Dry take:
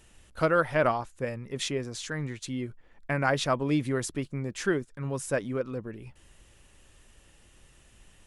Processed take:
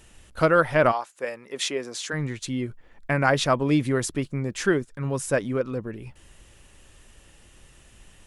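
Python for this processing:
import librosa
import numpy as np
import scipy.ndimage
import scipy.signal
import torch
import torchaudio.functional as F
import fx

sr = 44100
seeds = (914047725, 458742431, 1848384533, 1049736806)

y = fx.highpass(x, sr, hz=fx.line((0.91, 610.0), (2.12, 280.0)), slope=12, at=(0.91, 2.12), fade=0.02)
y = y * librosa.db_to_amplitude(5.0)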